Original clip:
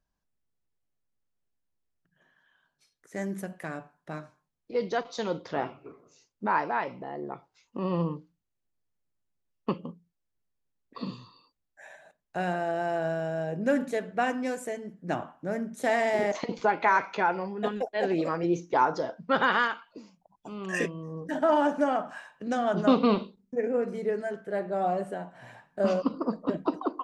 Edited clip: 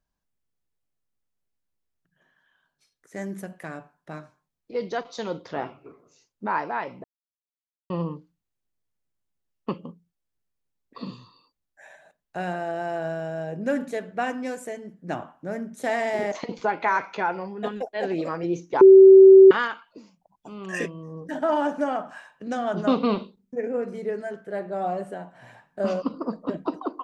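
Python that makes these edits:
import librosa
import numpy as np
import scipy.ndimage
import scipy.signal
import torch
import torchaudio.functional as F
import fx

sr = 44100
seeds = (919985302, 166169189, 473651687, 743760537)

y = fx.edit(x, sr, fx.silence(start_s=7.04, length_s=0.86),
    fx.bleep(start_s=18.81, length_s=0.7, hz=384.0, db=-6.0), tone=tone)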